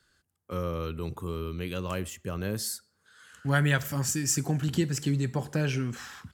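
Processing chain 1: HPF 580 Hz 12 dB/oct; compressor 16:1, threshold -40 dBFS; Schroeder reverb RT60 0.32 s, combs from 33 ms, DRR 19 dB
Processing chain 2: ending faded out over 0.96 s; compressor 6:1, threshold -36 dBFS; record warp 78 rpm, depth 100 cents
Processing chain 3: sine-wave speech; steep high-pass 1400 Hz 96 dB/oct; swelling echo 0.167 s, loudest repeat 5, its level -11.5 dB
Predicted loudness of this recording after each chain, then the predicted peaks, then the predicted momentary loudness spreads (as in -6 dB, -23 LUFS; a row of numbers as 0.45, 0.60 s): -44.5, -40.5, -35.5 LUFS; -24.0, -24.0, -16.5 dBFS; 6, 8, 21 LU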